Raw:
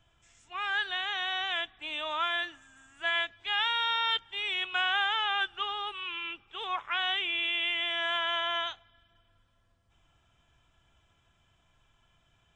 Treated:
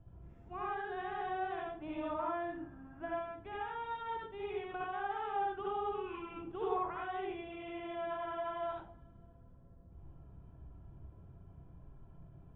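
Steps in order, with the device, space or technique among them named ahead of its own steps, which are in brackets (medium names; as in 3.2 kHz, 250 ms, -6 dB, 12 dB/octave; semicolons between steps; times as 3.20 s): television next door (compression 4:1, threshold -35 dBFS, peak gain reduction 10 dB; low-pass 440 Hz 12 dB/octave; reverberation RT60 0.40 s, pre-delay 60 ms, DRR -4 dB); 2.13–3.84 s: low-pass 3.1 kHz; trim +10 dB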